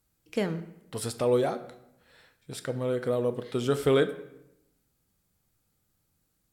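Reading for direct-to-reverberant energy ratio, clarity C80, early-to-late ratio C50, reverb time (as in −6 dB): 10.0 dB, 15.5 dB, 13.5 dB, 0.85 s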